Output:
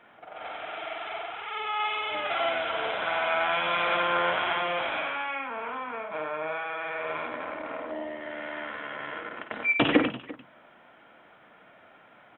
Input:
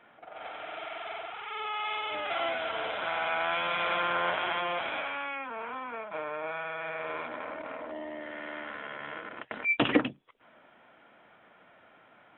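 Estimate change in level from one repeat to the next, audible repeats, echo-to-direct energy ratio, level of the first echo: repeats not evenly spaced, 3, −6.5 dB, −10.5 dB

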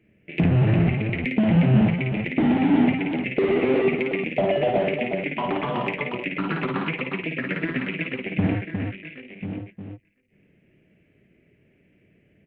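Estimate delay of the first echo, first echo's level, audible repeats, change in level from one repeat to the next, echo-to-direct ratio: 54 ms, −4.0 dB, 2, repeats not evenly spaced, −2.0 dB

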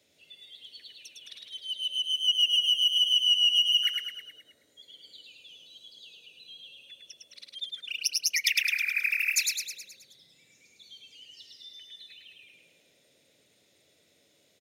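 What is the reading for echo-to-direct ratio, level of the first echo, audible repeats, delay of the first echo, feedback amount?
−1.5 dB, −3.0 dB, 6, 106 ms, 54%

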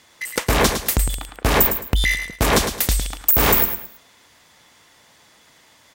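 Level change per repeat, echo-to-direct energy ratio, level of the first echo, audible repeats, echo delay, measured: −10.5 dB, −7.5 dB, −8.0 dB, 3, 108 ms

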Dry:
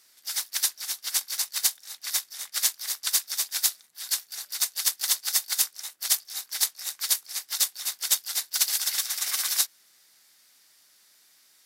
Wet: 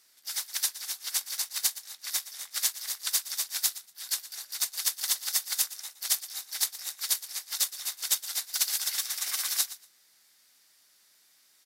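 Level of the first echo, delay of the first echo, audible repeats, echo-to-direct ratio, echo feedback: −15.5 dB, 118 ms, 2, −15.5 dB, 18%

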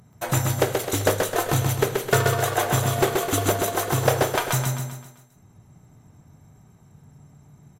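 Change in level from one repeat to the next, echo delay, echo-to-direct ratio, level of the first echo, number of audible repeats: −6.5 dB, 130 ms, −3.0 dB, −4.0 dB, 5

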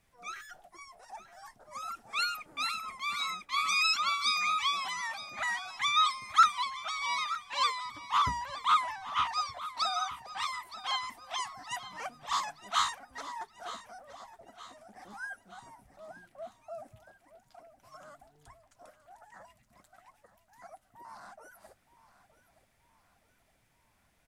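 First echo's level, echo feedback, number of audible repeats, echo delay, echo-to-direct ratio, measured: −15.0 dB, 46%, 3, 920 ms, −14.0 dB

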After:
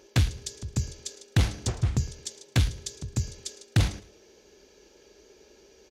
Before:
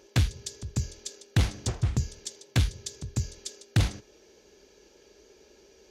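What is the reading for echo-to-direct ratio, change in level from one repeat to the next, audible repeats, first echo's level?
−18.5 dB, −11.5 dB, 2, −19.0 dB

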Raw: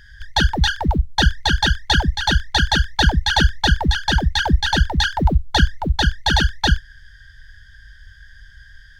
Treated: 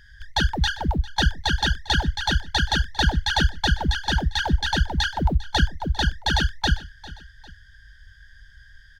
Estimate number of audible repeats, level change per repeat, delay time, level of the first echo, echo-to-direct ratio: 2, −6.5 dB, 400 ms, −19.0 dB, −18.0 dB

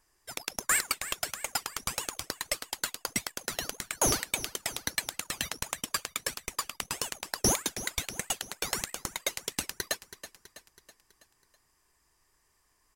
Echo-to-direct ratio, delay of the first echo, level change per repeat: −12.5 dB, 326 ms, −5.5 dB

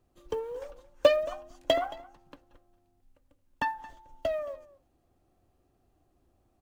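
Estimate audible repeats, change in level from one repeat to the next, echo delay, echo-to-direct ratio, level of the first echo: 1, repeats not evenly spaced, 223 ms, −20.0 dB, −20.0 dB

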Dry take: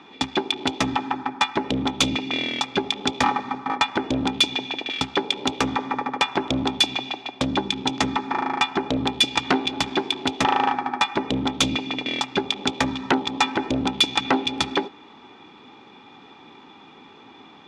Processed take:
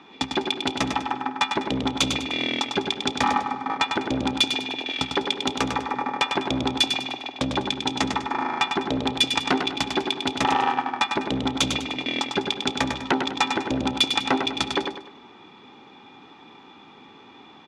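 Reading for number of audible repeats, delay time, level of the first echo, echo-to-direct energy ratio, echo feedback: 4, 100 ms, −6.0 dB, −5.5 dB, 35%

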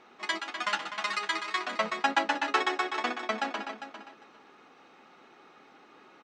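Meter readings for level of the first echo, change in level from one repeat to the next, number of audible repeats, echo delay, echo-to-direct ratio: −11.0 dB, −16.5 dB, 2, 401 ms, −11.0 dB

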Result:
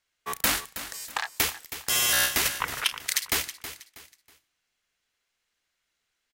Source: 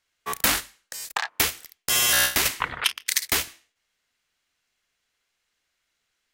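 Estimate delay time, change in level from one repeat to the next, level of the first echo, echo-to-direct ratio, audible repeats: 321 ms, −10.0 dB, −12.5 dB, −12.0 dB, 3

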